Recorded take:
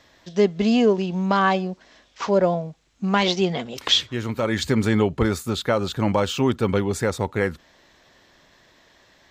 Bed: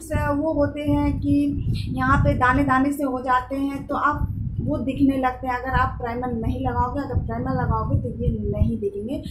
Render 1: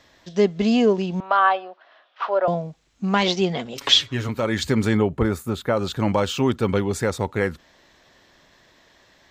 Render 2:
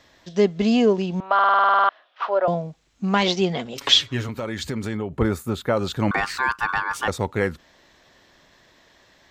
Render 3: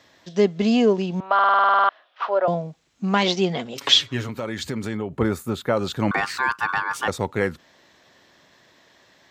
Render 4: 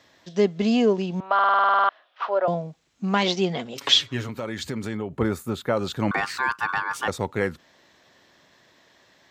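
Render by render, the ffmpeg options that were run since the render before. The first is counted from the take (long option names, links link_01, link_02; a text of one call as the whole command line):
ffmpeg -i in.wav -filter_complex "[0:a]asettb=1/sr,asplit=3[link_01][link_02][link_03];[link_01]atrim=end=1.204[link_04];[link_02]atrim=start=1.2:end=2.48,asetpts=PTS-STARTPTS,afade=type=in:duration=0.004:curve=qsin,afade=type=out:start_time=1.276:duration=0.004:curve=qsin,highpass=frequency=450:width=0.5412,highpass=frequency=450:width=1.3066,equalizer=frequency=460:width_type=q:width=4:gain=-8,equalizer=frequency=690:width_type=q:width=4:gain=5,equalizer=frequency=1300:width_type=q:width=4:gain=7,equalizer=frequency=2200:width_type=q:width=4:gain=-6,lowpass=frequency=3300:width=0.5412,lowpass=frequency=3300:width=1.3066[link_05];[link_03]atrim=start=2.476[link_06];[link_04][link_05]acrossfade=duration=0.004:curve1=hsin:curve2=qsin[link_07];[link_07][link_06]acrossfade=duration=0.004:curve1=qsin:curve2=hsin,asettb=1/sr,asplit=3[link_08][link_09][link_10];[link_08]atrim=end=3.774[link_11];[link_09]atrim=start=3.77:end=4.29,asetpts=PTS-STARTPTS,afade=type=in:duration=0.004:curve=qsin,afade=type=out:start_time=0.516:duration=0.004:curve=qsin,aecho=1:1:7.2:0.8,atrim=end_sample=22932[link_12];[link_10]atrim=start=4.286[link_13];[link_11][link_12]acrossfade=duration=0.004:curve1=hsin:curve2=qsin[link_14];[link_14][link_13]acrossfade=duration=0.004:curve1=qsin:curve2=hsin,asettb=1/sr,asplit=3[link_15][link_16][link_17];[link_15]atrim=end=4.974[link_18];[link_16]atrim=start=4.97:end=5.77,asetpts=PTS-STARTPTS,afade=type=in:duration=0.004:curve=qsin,afade=type=out:start_time=0.796:duration=0.004:curve=qsin,equalizer=frequency=4800:width=0.69:gain=-9.5[link_19];[link_17]atrim=start=5.766[link_20];[link_18][link_19]acrossfade=duration=0.004:curve1=hsin:curve2=qsin[link_21];[link_21][link_20]acrossfade=duration=0.004:curve1=qsin:curve2=hsin" out.wav
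ffmpeg -i in.wav -filter_complex "[0:a]asettb=1/sr,asplit=3[link_01][link_02][link_03];[link_01]atrim=end=4.224[link_04];[link_02]atrim=start=4.22:end=5.18,asetpts=PTS-STARTPTS,afade=type=in:duration=0.004:curve=qsin,afade=type=out:start_time=0.956:duration=0.004:curve=qsin,acompressor=threshold=-27dB:ratio=2.5:attack=3.2:release=140:knee=1:detection=peak[link_05];[link_03]atrim=start=5.176[link_06];[link_04][link_05]acrossfade=duration=0.004:curve1=hsin:curve2=qsin[link_07];[link_07][link_06]acrossfade=duration=0.004:curve1=qsin:curve2=hsin,asettb=1/sr,asplit=3[link_08][link_09][link_10];[link_08]atrim=end=6.114[link_11];[link_09]atrim=start=6.11:end=7.08,asetpts=PTS-STARTPTS,afade=type=in:duration=0.004:curve=qsin,afade=type=out:start_time=0.966:duration=0.004:curve=qsin,aeval=exprs='val(0)*sin(2*PI*1300*n/s)':channel_layout=same[link_12];[link_10]atrim=start=7.076[link_13];[link_11][link_12]acrossfade=duration=0.004:curve1=hsin:curve2=qsin[link_14];[link_14][link_13]acrossfade=duration=0.004:curve1=qsin:curve2=hsin,asplit=12[link_15][link_16][link_17][link_18][link_19][link_20][link_21][link_22][link_23][link_24][link_25][link_26];[link_15]atrim=end=1.392[link_27];[link_16]atrim=start=1.338:end=1.392[link_28];[link_17]atrim=start=1.338:end=1.392[link_29];[link_18]atrim=start=1.338:end=1.392[link_30];[link_19]atrim=start=1.338:end=1.392[link_31];[link_20]atrim=start=1.338:end=1.392[link_32];[link_21]atrim=start=1.338:end=1.392[link_33];[link_22]atrim=start=1.338:end=1.392[link_34];[link_23]atrim=start=1.338:end=1.392[link_35];[link_24]atrim=start=1.338:end=1.392[link_36];[link_25]atrim=start=1.338:end=1.392[link_37];[link_26]atrim=start=1.888[link_38];[link_27][link_28]acrossfade=duration=0.004:curve1=hsin:curve2=hsin[link_39];[link_39][link_29]acrossfade=duration=0.004:curve1=hsin:curve2=hsin[link_40];[link_40][link_30]acrossfade=duration=0.004:curve1=hsin:curve2=hsin[link_41];[link_41][link_31]acrossfade=duration=0.004:curve1=hsin:curve2=hsin[link_42];[link_42][link_32]acrossfade=duration=0.004:curve1=hsin:curve2=hsin[link_43];[link_43][link_33]acrossfade=duration=0.004:curve1=hsin:curve2=hsin[link_44];[link_44][link_34]acrossfade=duration=0.004:curve1=hsin:curve2=hsin[link_45];[link_45][link_35]acrossfade=duration=0.004:curve1=hsin:curve2=hsin[link_46];[link_46][link_36]acrossfade=duration=0.004:curve1=hsin:curve2=hsin[link_47];[link_47][link_37]acrossfade=duration=0.004:curve1=hsin:curve2=hsin[link_48];[link_48][link_38]acrossfade=duration=0.004:curve1=hsin:curve2=hsin" out.wav
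ffmpeg -i in.wav -af "highpass=96" out.wav
ffmpeg -i in.wav -af "volume=-2dB" out.wav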